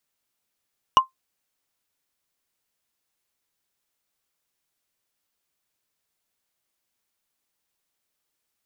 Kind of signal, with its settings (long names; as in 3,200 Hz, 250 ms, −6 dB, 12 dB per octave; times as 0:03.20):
struck wood, lowest mode 1,050 Hz, decay 0.13 s, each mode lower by 8 dB, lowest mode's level −6 dB